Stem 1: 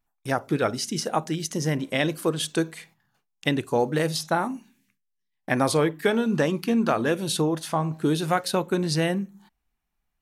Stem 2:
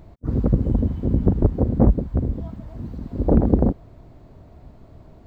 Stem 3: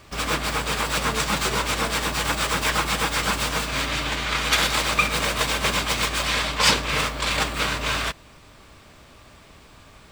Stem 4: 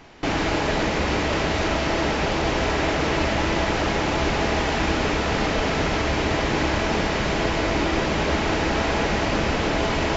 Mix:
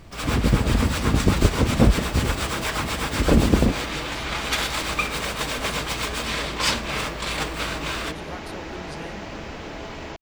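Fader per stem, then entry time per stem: -16.0, -1.0, -4.5, -12.5 dB; 0.00, 0.00, 0.00, 0.00 s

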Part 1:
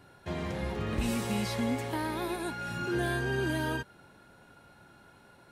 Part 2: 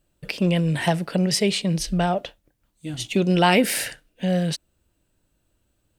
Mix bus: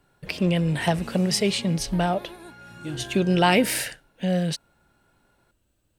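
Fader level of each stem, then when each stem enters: -8.5, -1.5 dB; 0.00, 0.00 s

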